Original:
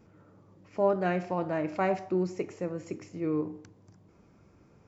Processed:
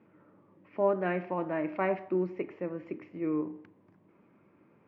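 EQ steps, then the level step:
loudspeaker in its box 230–2,600 Hz, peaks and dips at 460 Hz −5 dB, 740 Hz −6 dB, 1,400 Hz −4 dB
+1.5 dB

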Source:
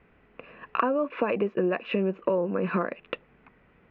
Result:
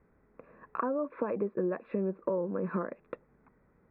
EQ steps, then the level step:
moving average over 15 samples
high-frequency loss of the air 83 metres
notch filter 710 Hz, Q 12
−5.0 dB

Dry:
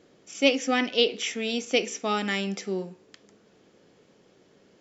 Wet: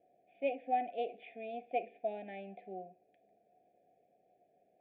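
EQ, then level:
formant resonators in series a
elliptic band-stop filter 700–1,700 Hz, stop band 50 dB
high-shelf EQ 2,100 Hz +11 dB
+7.0 dB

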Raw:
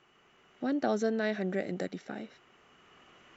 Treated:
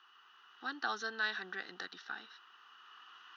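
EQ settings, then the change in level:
high-pass filter 1,200 Hz 12 dB per octave
high-shelf EQ 3,400 Hz −6 dB
phaser with its sweep stopped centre 2,200 Hz, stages 6
+9.0 dB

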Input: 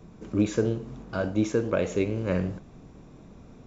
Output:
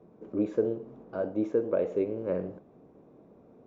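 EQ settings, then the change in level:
resonant band-pass 480 Hz, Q 1.3
0.0 dB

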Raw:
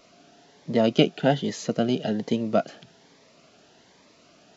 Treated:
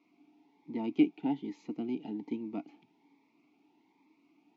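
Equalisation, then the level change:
formant filter u
notch filter 3,000 Hz, Q 20
0.0 dB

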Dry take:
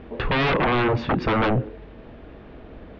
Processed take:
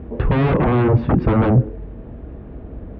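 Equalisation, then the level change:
high-pass filter 52 Hz
spectral tilt −3.5 dB per octave
high-shelf EQ 3,600 Hz −9.5 dB
0.0 dB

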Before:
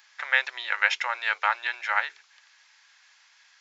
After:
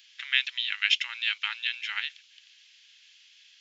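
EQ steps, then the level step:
high-pass with resonance 3,000 Hz, resonance Q 3.9
−2.5 dB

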